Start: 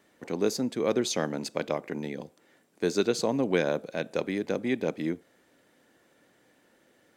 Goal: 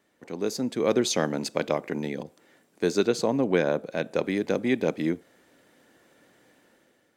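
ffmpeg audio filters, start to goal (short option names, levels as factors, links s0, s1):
-filter_complex "[0:a]dynaudnorm=f=240:g=5:m=2.82,asettb=1/sr,asplit=3[s0][s1][s2];[s0]atrim=end=2.234[s3];[s1]atrim=start=2.23:end=4.24,asetpts=PTS-STARTPTS,afade=t=in:d=0.004:c=qsin,afade=t=out:st=2.006:d=0.004:c=qsin,adynamicequalizer=threshold=0.0126:dfrequency=2400:dqfactor=0.7:tfrequency=2400:tqfactor=0.7:attack=5:release=100:ratio=0.375:range=3:mode=cutabove:tftype=highshelf[s4];[s2]atrim=start=4.236[s5];[s3][s4]acrossfade=d=0.004:c1=hsin:c2=qsin[s6];[s6][s5]acrossfade=d=0.004:c1=qsin:c2=hsin,volume=0.562"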